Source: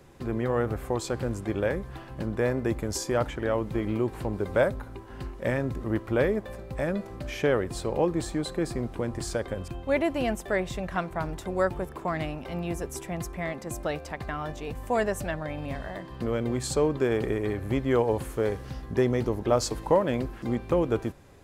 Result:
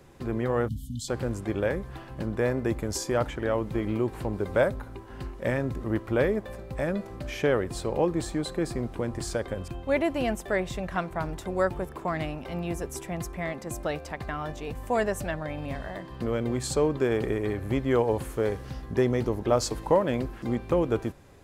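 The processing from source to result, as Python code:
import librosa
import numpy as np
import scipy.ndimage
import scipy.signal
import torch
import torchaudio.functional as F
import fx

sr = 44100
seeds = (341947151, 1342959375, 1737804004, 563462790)

y = fx.spec_erase(x, sr, start_s=0.68, length_s=0.41, low_hz=290.0, high_hz=2900.0)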